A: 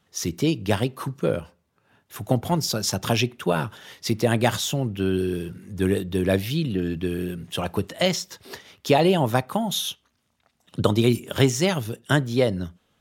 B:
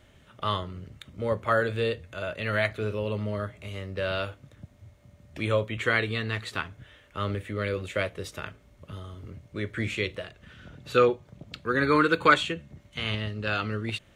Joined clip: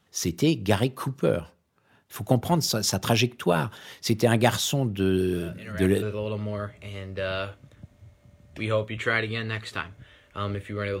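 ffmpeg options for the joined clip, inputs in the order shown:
-filter_complex "[1:a]asplit=2[s0][s1];[0:a]apad=whole_dur=11,atrim=end=11,atrim=end=6.022[s2];[s1]atrim=start=2.818:end=7.8[s3];[s0]atrim=start=2.06:end=2.82,asetpts=PTS-STARTPTS,volume=0.282,afade=t=in:d=0.004:c=hsin,afade=t=out:st=0.756:d=0.004:c=hsin,adelay=5260[s4];[s2][s3]acrossfade=d=0.004:c1=hsin:c2=hsin[s5];[s5][s4]amix=inputs=2:normalize=0"

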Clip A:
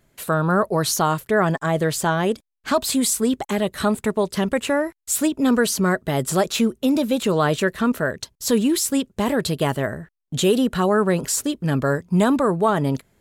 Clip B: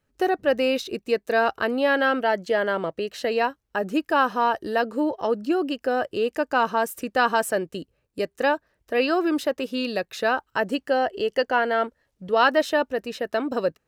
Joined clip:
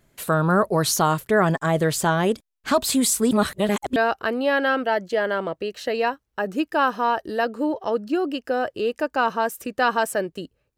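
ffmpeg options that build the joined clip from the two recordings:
-filter_complex "[0:a]apad=whole_dur=10.77,atrim=end=10.77,asplit=2[s0][s1];[s0]atrim=end=3.312[s2];[s1]atrim=start=3.308:end=3.962,asetpts=PTS-STARTPTS,areverse[s3];[1:a]atrim=start=1.328:end=8.14[s4];[s2][s3]acrossfade=d=0.004:c1=hsin:c2=hsin[s5];[s5][s4]acrossfade=d=0.004:c1=hsin:c2=hsin"

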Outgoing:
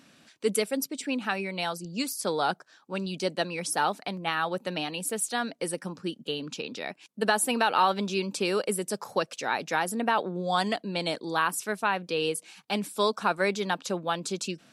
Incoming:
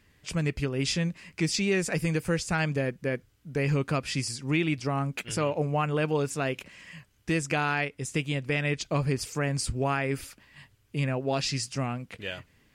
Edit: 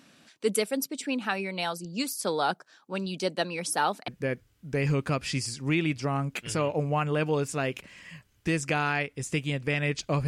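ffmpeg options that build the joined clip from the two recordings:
-filter_complex "[0:a]apad=whole_dur=10.27,atrim=end=10.27,atrim=end=4.082[s0];[1:a]atrim=start=2.898:end=9.09[s1];[s0][s1]acrossfade=d=0.004:c1=hsin:c2=hsin"

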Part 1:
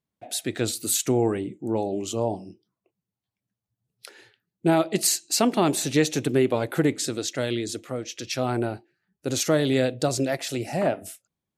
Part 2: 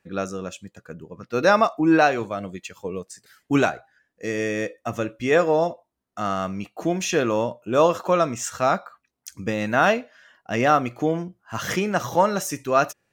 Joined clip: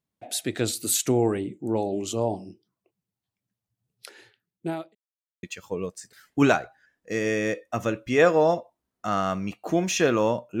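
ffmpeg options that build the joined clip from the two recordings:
-filter_complex "[0:a]apad=whole_dur=10.6,atrim=end=10.6,asplit=2[s0][s1];[s0]atrim=end=4.95,asetpts=PTS-STARTPTS,afade=t=out:st=4.18:d=0.77[s2];[s1]atrim=start=4.95:end=5.43,asetpts=PTS-STARTPTS,volume=0[s3];[1:a]atrim=start=2.56:end=7.73,asetpts=PTS-STARTPTS,afade=t=in:d=0.004:c=hsin[s4];[s2][s3][s4]concat=n=3:v=0:a=1"

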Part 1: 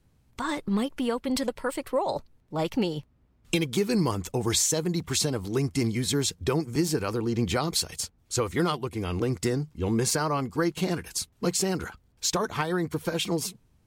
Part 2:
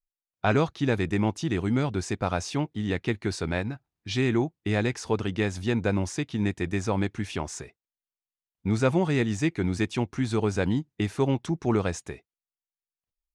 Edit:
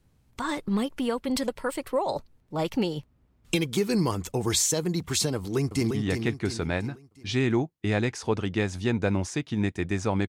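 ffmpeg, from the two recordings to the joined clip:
-filter_complex "[0:a]apad=whole_dur=10.28,atrim=end=10.28,atrim=end=5.912[s0];[1:a]atrim=start=2.728:end=7.1[s1];[s0][s1]acrossfade=d=0.004:c1=hsin:c2=hsin,asplit=2[s2][s3];[s3]afade=t=in:st=5.36:d=0.01,afade=t=out:st=5.91:d=0.01,aecho=0:1:350|700|1050|1400|1750:0.501187|0.225534|0.10149|0.0456707|0.0205518[s4];[s2][s4]amix=inputs=2:normalize=0"

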